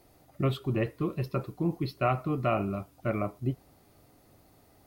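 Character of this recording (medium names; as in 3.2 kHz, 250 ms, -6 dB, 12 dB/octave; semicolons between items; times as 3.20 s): noise floor -62 dBFS; spectral tilt -6.0 dB/octave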